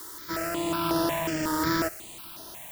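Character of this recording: aliases and images of a low sample rate 6300 Hz, jitter 0%; tremolo triangle 1.3 Hz, depth 35%; a quantiser's noise floor 8-bit, dither triangular; notches that jump at a steady rate 5.5 Hz 680–7600 Hz

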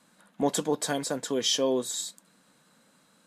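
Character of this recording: noise floor -64 dBFS; spectral tilt -2.5 dB/oct

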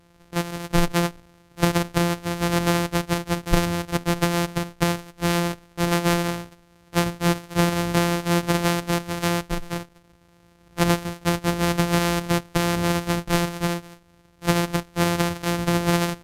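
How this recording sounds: a buzz of ramps at a fixed pitch in blocks of 256 samples; Vorbis

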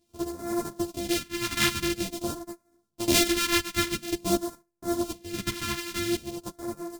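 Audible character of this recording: a buzz of ramps at a fixed pitch in blocks of 128 samples; phasing stages 2, 0.48 Hz, lowest notch 560–2800 Hz; random-step tremolo 1.3 Hz, depth 75%; a shimmering, thickened sound

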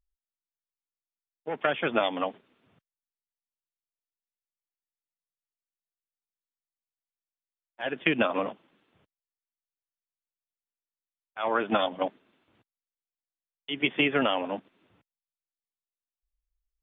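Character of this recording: noise floor -96 dBFS; spectral tilt -2.0 dB/oct

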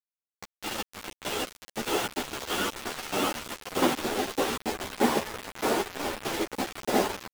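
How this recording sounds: chopped level 1.6 Hz, depth 60%, duty 30%; a quantiser's noise floor 6-bit, dither none; a shimmering, thickened sound

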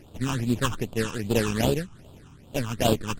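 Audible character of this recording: aliases and images of a low sample rate 2200 Hz, jitter 20%; phasing stages 8, 2.5 Hz, lowest notch 550–1900 Hz; MP3

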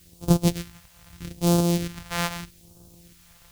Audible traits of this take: a buzz of ramps at a fixed pitch in blocks of 256 samples; tremolo saw up 1.6 Hz, depth 55%; a quantiser's noise floor 10-bit, dither triangular; phasing stages 2, 0.8 Hz, lowest notch 280–1900 Hz

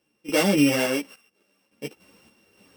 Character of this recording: a buzz of ramps at a fixed pitch in blocks of 16 samples; random-step tremolo, depth 90%; a shimmering, thickened sound

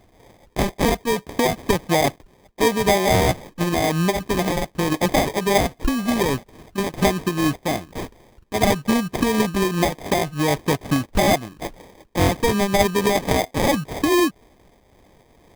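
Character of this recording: aliases and images of a low sample rate 1400 Hz, jitter 0%; noise-modulated level

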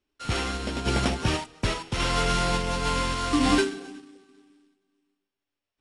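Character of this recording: a buzz of ramps at a fixed pitch in blocks of 8 samples; random-step tremolo; aliases and images of a low sample rate 8500 Hz, jitter 20%; AAC

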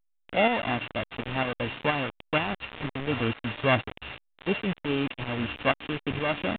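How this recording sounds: a buzz of ramps at a fixed pitch in blocks of 16 samples; tremolo saw up 2.1 Hz, depth 50%; a quantiser's noise floor 6-bit, dither none; A-law

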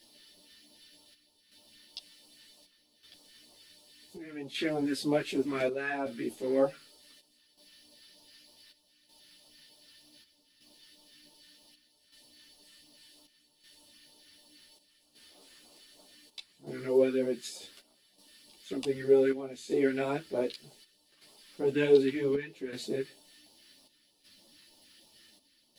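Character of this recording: a quantiser's noise floor 12-bit, dither triangular; phasing stages 2, 3.2 Hz, lowest notch 710–1700 Hz; chopped level 0.66 Hz, depth 65%, duty 75%; a shimmering, thickened sound

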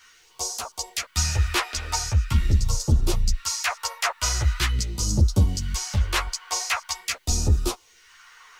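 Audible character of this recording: phasing stages 2, 0.43 Hz, lowest notch 140–2000 Hz; a quantiser's noise floor 12-bit, dither triangular; a shimmering, thickened sound

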